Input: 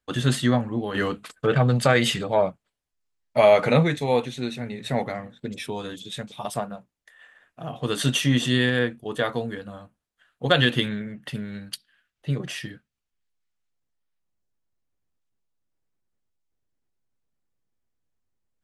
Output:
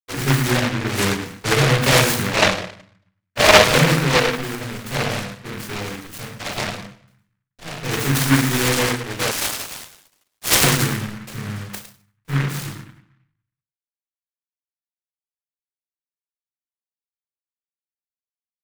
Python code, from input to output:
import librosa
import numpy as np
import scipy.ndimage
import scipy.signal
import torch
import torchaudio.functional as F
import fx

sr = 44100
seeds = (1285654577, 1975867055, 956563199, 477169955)

y = np.sign(x) * np.maximum(np.abs(x) - 10.0 ** (-42.0 / 20.0), 0.0)
y = y + 10.0 ** (-12.5 / 20.0) * np.pad(y, (int(107 * sr / 1000.0), 0))[:len(y)]
y = fx.room_shoebox(y, sr, seeds[0], volume_m3=56.0, walls='mixed', distance_m=3.5)
y = fx.freq_invert(y, sr, carrier_hz=3000, at=(9.31, 10.64))
y = fx.noise_mod_delay(y, sr, seeds[1], noise_hz=1500.0, depth_ms=0.29)
y = y * librosa.db_to_amplitude(-10.0)